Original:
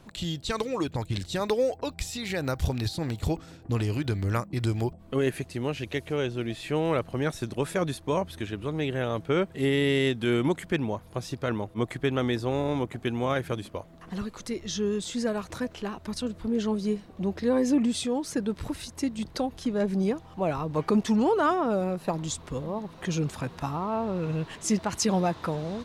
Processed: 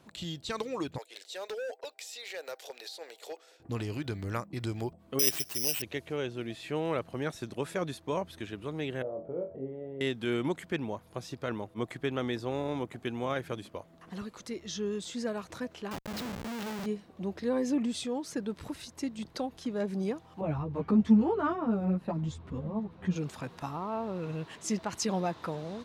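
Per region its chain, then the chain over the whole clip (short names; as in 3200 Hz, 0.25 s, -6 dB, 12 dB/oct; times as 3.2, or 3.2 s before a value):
0.98–3.6 Chebyshev high-pass 450 Hz, order 4 + bell 1100 Hz -8 dB 0.87 oct + hard clip -29 dBFS
5.19–5.82 tilt +2 dB/oct + fixed phaser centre 3000 Hz, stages 4 + careless resampling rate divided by 8×, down none, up zero stuff
9.02–10.01 compressor 3:1, threshold -38 dBFS + synth low-pass 570 Hz, resonance Q 3.8 + flutter echo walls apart 3.9 m, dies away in 0.3 s
15.91–16.86 LPF 6000 Hz + de-hum 52.68 Hz, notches 6 + Schmitt trigger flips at -39.5 dBFS
20.41–23.16 tone controls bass +14 dB, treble -13 dB + ensemble effect
whole clip: HPF 140 Hz 6 dB/oct; dynamic EQ 10000 Hz, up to -4 dB, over -55 dBFS, Q 1.7; gain -5 dB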